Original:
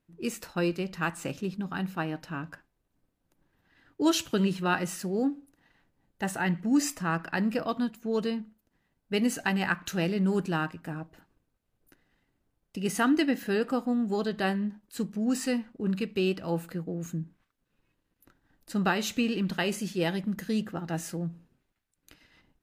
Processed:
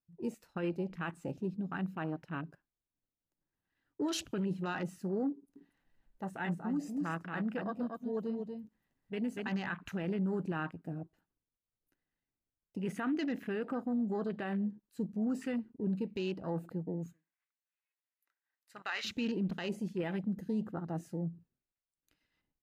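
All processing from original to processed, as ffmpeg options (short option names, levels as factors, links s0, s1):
-filter_complex "[0:a]asettb=1/sr,asplit=3[s0][s1][s2];[s0]atrim=end=5.324[s3];[s1]atrim=start=5.32:end=9.49,asetpts=PTS-STARTPTS,afade=t=in:d=0.004:c=qsin,afade=t=out:st=4.166:d=0.004:c=qsin,flanger=delay=3.2:depth=2.1:regen=-85:speed=1.2:shape=triangular,acompressor=mode=upward:threshold=0.00501:ratio=2.5:attack=3.2:release=140:knee=2.83:detection=peak,aecho=1:1:239:0.562,atrim=end_sample=183897[s4];[s2]atrim=start=9.486[s5];[s3][s4]acrossfade=d=0.004:c1=hsin:c2=qsin[s6];[s6][s5]acrossfade=d=0.004:c1=qsin:c2=hsin,asettb=1/sr,asplit=3[s7][s8][s9];[s7]atrim=end=17.134[s10];[s8]atrim=start=17.13:end=19.05,asetpts=PTS-STARTPTS,afade=t=in:d=0.004:c=qsin,afade=t=out:st=1.916:d=0.004:c=qsin,highpass=950,equalizer=f=2100:w=2.8:g=7.5[s11];[s9]atrim=start=19.046[s12];[s10][s11]acrossfade=d=0.004:c1=hsin:c2=qsin[s13];[s13][s12]acrossfade=d=0.004:c1=qsin:c2=hsin,afwtdn=0.0112,alimiter=limit=0.0668:level=0:latency=1:release=18,volume=0.668"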